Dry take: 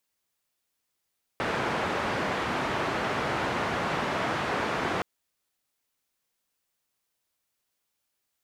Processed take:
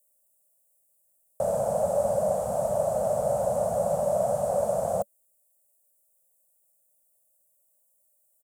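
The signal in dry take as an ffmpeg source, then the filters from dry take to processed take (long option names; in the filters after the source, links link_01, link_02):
-f lavfi -i "anoisesrc=color=white:duration=3.62:sample_rate=44100:seed=1,highpass=frequency=89,lowpass=frequency=1400,volume=-12.4dB"
-af "firequalizer=gain_entry='entry(210,0);entry(300,-28);entry(570,15);entry(950,-10);entry(2000,-30);entry(3800,-23);entry(8100,13)':delay=0.05:min_phase=1"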